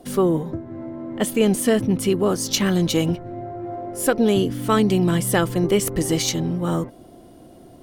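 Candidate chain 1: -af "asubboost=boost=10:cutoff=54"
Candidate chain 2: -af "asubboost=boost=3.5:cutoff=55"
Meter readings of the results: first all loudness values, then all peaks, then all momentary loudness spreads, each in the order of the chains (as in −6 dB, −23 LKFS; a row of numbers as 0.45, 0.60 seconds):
−22.5, −21.5 LKFS; −4.5, −5.0 dBFS; 12, 13 LU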